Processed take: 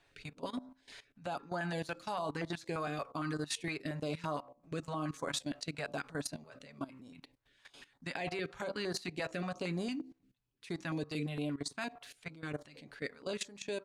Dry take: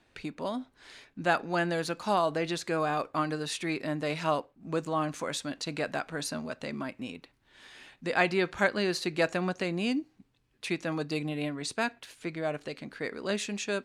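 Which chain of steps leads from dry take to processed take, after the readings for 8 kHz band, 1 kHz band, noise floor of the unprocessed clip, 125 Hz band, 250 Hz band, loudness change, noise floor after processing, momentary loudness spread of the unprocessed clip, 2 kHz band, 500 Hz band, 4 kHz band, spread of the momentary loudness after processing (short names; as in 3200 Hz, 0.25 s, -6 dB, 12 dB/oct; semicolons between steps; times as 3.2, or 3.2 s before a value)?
-5.5 dB, -10.0 dB, -70 dBFS, -4.5 dB, -7.0 dB, -8.0 dB, -72 dBFS, 12 LU, -10.0 dB, -9.5 dB, -6.5 dB, 13 LU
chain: comb 7.1 ms, depth 38%; de-hum 65.14 Hz, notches 21; level quantiser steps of 17 dB; stepped notch 8.7 Hz 230–2600 Hz; gain -1 dB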